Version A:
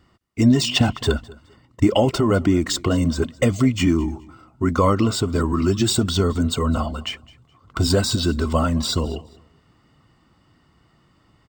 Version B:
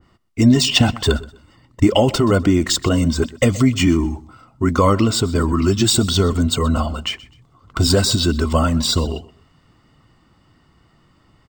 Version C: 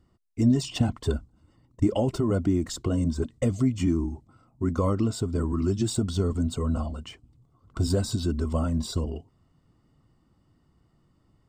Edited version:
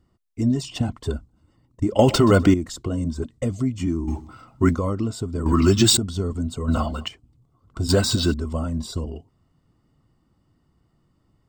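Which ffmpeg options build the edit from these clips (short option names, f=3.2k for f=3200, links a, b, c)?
-filter_complex "[1:a]asplit=3[a][b][c];[0:a]asplit=2[d][e];[2:a]asplit=6[f][g][h][i][j][k];[f]atrim=end=1.992[l];[a]atrim=start=1.988:end=2.542[m];[g]atrim=start=2.538:end=4.09[n];[b]atrim=start=4.07:end=4.76[o];[h]atrim=start=4.74:end=5.462[p];[c]atrim=start=5.458:end=5.972[q];[i]atrim=start=5.968:end=6.682[r];[d]atrim=start=6.678:end=7.082[s];[j]atrim=start=7.078:end=7.892[t];[e]atrim=start=7.888:end=8.342[u];[k]atrim=start=8.338[v];[l][m]acrossfade=d=0.004:c1=hsin:c2=hsin[w];[w][n]acrossfade=d=0.004:c1=hsin:c2=hsin[x];[x][o]acrossfade=d=0.02:c1=tri:c2=tri[y];[y][p]acrossfade=d=0.02:c1=tri:c2=tri[z];[z][q]acrossfade=d=0.004:c1=hsin:c2=hsin[aa];[aa][r]acrossfade=d=0.004:c1=hsin:c2=hsin[ab];[ab][s]acrossfade=d=0.004:c1=hsin:c2=hsin[ac];[ac][t]acrossfade=d=0.004:c1=hsin:c2=hsin[ad];[ad][u]acrossfade=d=0.004:c1=hsin:c2=hsin[ae];[ae][v]acrossfade=d=0.004:c1=hsin:c2=hsin"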